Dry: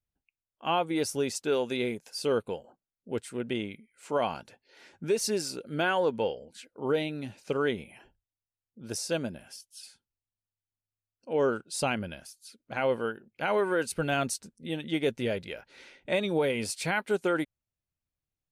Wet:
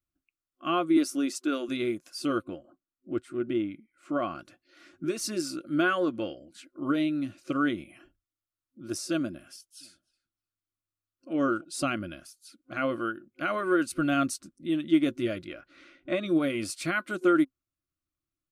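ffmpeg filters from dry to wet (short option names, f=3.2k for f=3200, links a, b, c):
-filter_complex "[0:a]asettb=1/sr,asplit=3[a][b][c];[a]atrim=end=0.974[d];[b]atrim=start=0.97:end=1.69,asetpts=PTS-STARTPTS,afade=t=in:d=0.004:c=qsin,afade=t=out:st=0.716:d=0.004:c=qsin,highpass=f=230:w=0.5412,highpass=f=230:w=1.3066[e];[c]atrim=start=1.686[f];[d][e]acrossfade=d=0.004:c1=hsin:c2=qsin[g];[g][f]acrossfade=d=0.004:c1=qsin:c2=hsin,asettb=1/sr,asplit=3[h][i][j];[h]atrim=end=2.444[k];[i]atrim=start=2.44:end=4.39,asetpts=PTS-STARTPTS,afade=t=in:d=0.004:c=qsin,afade=t=out:st=1.946:d=0.004:c=qsin,highshelf=f=3.3k:g=-12[l];[j]atrim=start=4.386[m];[k][l]acrossfade=d=0.004:c1=hsin:c2=qsin[n];[n][m]acrossfade=d=0.004:c1=qsin:c2=hsin,asplit=3[o][p][q];[o]afade=t=out:st=9.8:d=0.02[r];[p]asplit=2[s][t];[t]adelay=303,lowpass=f=1.4k:p=1,volume=-17dB,asplit=2[u][v];[v]adelay=303,lowpass=f=1.4k:p=1,volume=0.23[w];[s][u][w]amix=inputs=3:normalize=0,afade=t=in:st=9.8:d=0.02,afade=t=out:st=11.63:d=0.02[x];[q]afade=t=in:st=11.63:d=0.02[y];[r][x][y]amix=inputs=3:normalize=0,asettb=1/sr,asplit=3[z][aa][ab];[z]atrim=end=15.474[ac];[aa]atrim=start=15.47:end=16.26,asetpts=PTS-STARTPTS,afade=t=in:d=0.004:c=qsin,afade=t=out:st=0.786:d=0.004:c=qsin,lowpass=f=3.4k:p=1[ad];[ab]atrim=start=16.256[ae];[ac][ad]acrossfade=d=0.004:c1=hsin:c2=qsin[af];[af][ae]acrossfade=d=0.004:c1=qsin:c2=hsin,superequalizer=6b=3.55:7b=0.282:9b=0.282:10b=2.24,volume=-2dB"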